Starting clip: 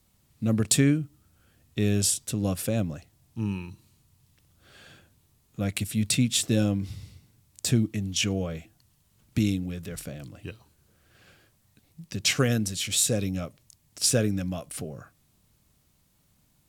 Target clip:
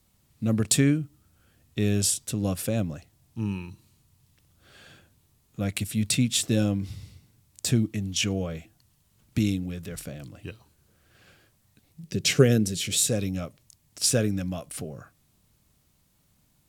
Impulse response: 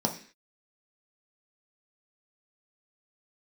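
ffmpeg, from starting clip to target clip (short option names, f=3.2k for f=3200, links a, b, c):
-filter_complex "[0:a]asettb=1/sr,asplit=3[a][b][c];[a]atrim=end=12.034[d];[b]atrim=start=12.03:end=13.07,asetpts=PTS-STARTPTS,afade=t=in:d=0.004:c=qsin,afade=t=out:st=1.036:d=0.004:c=qsin,equalizer=f=160:t=o:w=0.67:g=8,equalizer=f=400:t=o:w=0.67:g=10,equalizer=f=1k:t=o:w=0.67:g=-7[e];[c]atrim=start=13.066[f];[d][e]acrossfade=d=0.004:c1=hsin:c2=qsin[g];[g][f]acrossfade=d=0.004:c1=qsin:c2=hsin"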